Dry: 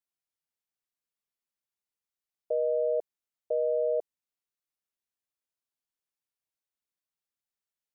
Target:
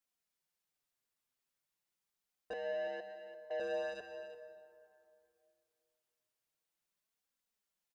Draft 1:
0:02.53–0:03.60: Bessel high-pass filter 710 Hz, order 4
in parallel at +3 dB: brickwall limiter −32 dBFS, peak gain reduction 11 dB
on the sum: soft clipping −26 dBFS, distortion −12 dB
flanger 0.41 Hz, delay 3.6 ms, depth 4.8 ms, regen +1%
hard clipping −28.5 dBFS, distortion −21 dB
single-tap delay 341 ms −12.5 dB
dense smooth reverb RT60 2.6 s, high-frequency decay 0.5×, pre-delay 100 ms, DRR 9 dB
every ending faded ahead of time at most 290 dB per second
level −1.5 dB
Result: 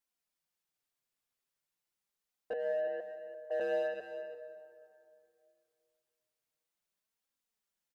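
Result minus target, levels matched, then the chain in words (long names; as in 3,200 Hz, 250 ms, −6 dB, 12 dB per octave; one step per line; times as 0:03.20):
soft clipping: distortion −5 dB
0:02.53–0:03.60: Bessel high-pass filter 710 Hz, order 4
in parallel at +3 dB: brickwall limiter −32 dBFS, peak gain reduction 11 dB
on the sum: soft clipping −33.5 dBFS, distortion −7 dB
flanger 0.41 Hz, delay 3.6 ms, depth 4.8 ms, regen +1%
hard clipping −28.5 dBFS, distortion −120 dB
single-tap delay 341 ms −12.5 dB
dense smooth reverb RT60 2.6 s, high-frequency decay 0.5×, pre-delay 100 ms, DRR 9 dB
every ending faded ahead of time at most 290 dB per second
level −1.5 dB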